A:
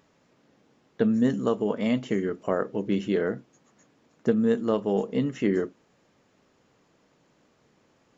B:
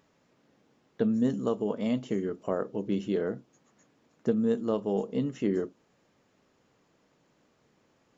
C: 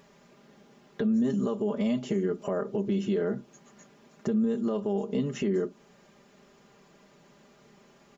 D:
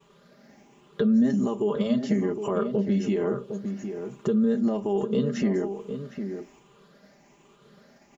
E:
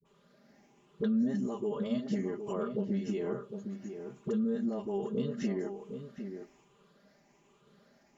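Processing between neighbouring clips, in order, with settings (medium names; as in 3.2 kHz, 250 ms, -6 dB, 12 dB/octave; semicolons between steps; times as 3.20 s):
dynamic bell 1.9 kHz, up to -7 dB, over -50 dBFS, Q 1.4; trim -3.5 dB
comb 5 ms, depth 76%; compression 3:1, threshold -32 dBFS, peak gain reduction 10 dB; peak limiter -27.5 dBFS, peak gain reduction 6.5 dB; trim +8 dB
drifting ripple filter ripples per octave 0.67, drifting +1.2 Hz, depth 9 dB; echo from a far wall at 130 m, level -8 dB; expander -53 dBFS; trim +2.5 dB
phase dispersion highs, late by 51 ms, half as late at 600 Hz; trim -8.5 dB; Vorbis 192 kbps 48 kHz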